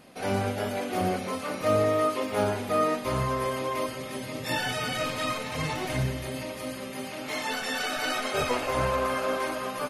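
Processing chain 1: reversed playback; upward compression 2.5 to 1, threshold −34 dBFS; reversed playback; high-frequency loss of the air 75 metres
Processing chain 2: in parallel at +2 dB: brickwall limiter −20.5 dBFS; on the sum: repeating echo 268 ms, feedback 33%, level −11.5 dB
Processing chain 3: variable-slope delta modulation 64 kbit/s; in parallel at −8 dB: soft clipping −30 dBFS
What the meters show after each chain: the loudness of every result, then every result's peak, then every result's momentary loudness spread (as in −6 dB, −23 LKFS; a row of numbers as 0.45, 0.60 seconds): −29.5, −22.5, −27.0 LKFS; −12.5, −9.0, −12.0 dBFS; 9, 7, 8 LU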